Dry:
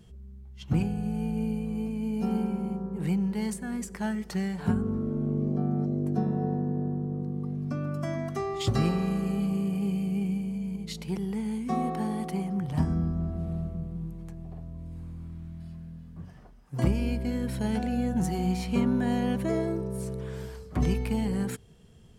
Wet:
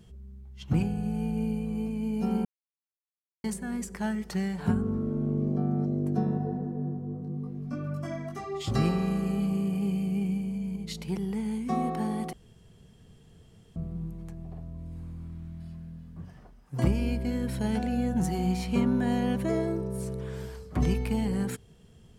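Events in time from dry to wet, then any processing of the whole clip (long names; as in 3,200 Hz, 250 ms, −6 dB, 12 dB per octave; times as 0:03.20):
0:02.45–0:03.44: silence
0:06.37–0:08.70: micro pitch shift up and down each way 27 cents → 15 cents
0:12.33–0:13.76: fill with room tone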